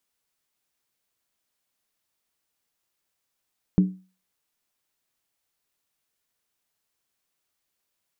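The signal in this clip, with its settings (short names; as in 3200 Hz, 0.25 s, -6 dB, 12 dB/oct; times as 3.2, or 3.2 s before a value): skin hit, lowest mode 186 Hz, decay 0.34 s, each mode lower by 10 dB, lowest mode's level -11 dB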